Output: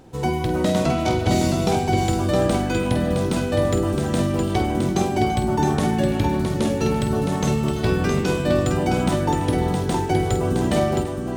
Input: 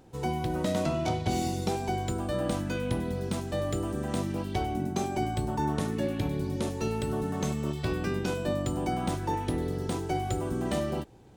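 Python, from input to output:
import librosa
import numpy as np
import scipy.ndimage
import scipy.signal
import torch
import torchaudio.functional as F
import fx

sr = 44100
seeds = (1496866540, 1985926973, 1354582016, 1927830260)

y = fx.high_shelf(x, sr, hz=11000.0, db=-3.0)
y = fx.echo_multitap(y, sr, ms=(49, 337, 665), db=(-9.5, -14.0, -5.0))
y = F.gain(torch.from_numpy(y), 8.0).numpy()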